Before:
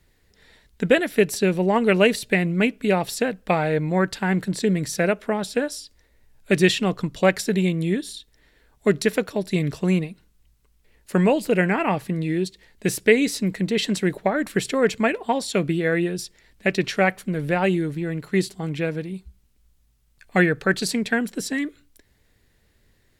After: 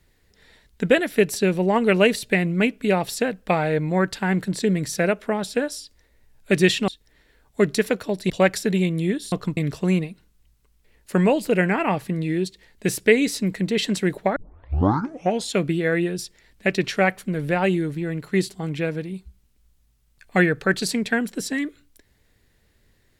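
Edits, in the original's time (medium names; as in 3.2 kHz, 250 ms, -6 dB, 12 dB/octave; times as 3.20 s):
6.88–7.13 s: swap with 8.15–9.57 s
14.36 s: tape start 1.17 s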